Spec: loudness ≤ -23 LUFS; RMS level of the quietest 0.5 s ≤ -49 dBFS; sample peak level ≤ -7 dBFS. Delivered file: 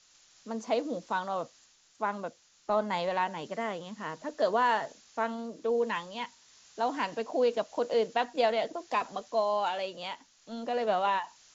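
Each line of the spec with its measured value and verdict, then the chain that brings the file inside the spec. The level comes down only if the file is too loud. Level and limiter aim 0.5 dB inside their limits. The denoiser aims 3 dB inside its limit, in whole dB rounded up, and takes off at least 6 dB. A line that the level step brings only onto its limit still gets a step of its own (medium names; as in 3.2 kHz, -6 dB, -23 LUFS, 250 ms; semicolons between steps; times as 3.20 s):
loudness -31.5 LUFS: pass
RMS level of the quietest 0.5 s -63 dBFS: pass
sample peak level -14.0 dBFS: pass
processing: none needed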